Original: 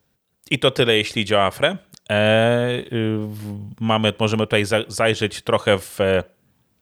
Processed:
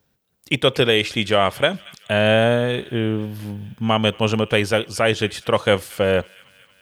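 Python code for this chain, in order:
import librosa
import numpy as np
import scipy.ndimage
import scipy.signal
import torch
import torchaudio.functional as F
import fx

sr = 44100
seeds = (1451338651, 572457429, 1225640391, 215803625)

y = fx.peak_eq(x, sr, hz=8700.0, db=-3.0, octaves=0.33)
y = fx.echo_wet_highpass(y, sr, ms=229, feedback_pct=65, hz=1700.0, wet_db=-20.0)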